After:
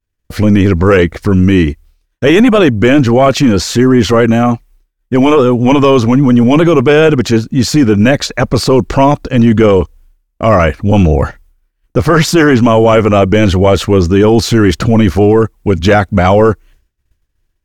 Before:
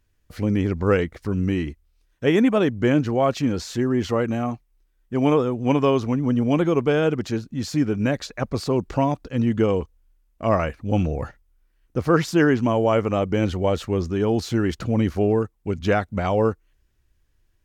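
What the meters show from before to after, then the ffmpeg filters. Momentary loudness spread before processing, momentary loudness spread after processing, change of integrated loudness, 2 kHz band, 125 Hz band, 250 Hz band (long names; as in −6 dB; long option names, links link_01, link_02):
8 LU, 6 LU, +13.0 dB, +14.0 dB, +13.0 dB, +13.0 dB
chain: -af "apsyclip=19dB,agate=range=-33dB:threshold=-33dB:ratio=3:detection=peak,volume=-2dB"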